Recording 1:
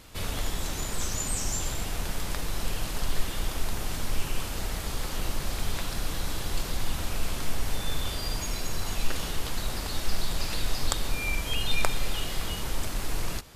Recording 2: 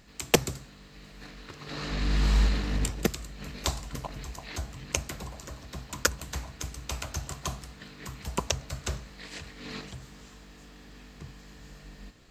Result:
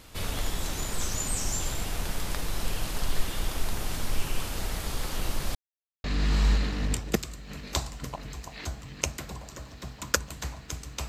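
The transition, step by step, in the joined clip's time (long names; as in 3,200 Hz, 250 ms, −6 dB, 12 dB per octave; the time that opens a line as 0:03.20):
recording 1
0:05.55–0:06.04: silence
0:06.04: continue with recording 2 from 0:01.95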